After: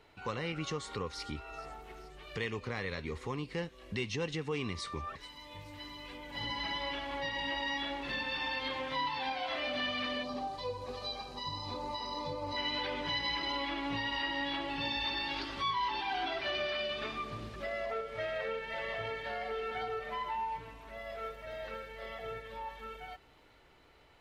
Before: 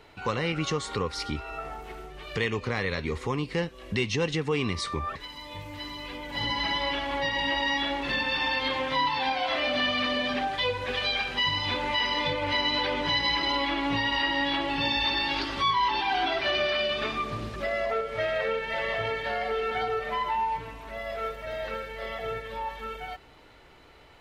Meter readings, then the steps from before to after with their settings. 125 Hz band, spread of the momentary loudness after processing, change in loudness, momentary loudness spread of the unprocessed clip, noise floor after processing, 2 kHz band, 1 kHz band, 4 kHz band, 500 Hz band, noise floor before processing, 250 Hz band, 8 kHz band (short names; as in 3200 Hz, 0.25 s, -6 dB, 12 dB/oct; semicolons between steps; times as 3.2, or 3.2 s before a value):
-8.5 dB, 11 LU, -9.0 dB, 11 LU, -60 dBFS, -9.0 dB, -8.5 dB, -9.0 dB, -8.5 dB, -52 dBFS, -8.5 dB, -8.5 dB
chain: spectral gain 10.23–12.57, 1300–3800 Hz -15 dB; on a send: thin delay 0.43 s, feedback 58%, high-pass 4600 Hz, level -15.5 dB; on the sum: gain -8.5 dB